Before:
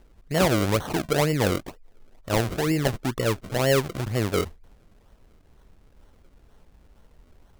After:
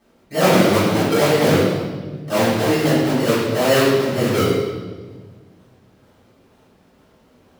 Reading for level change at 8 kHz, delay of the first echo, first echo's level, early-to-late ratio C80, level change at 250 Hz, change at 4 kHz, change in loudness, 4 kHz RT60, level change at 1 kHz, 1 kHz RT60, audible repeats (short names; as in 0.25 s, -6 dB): +5.5 dB, none, none, 1.0 dB, +9.0 dB, +7.5 dB, +7.5 dB, 1.2 s, +8.0 dB, 1.2 s, none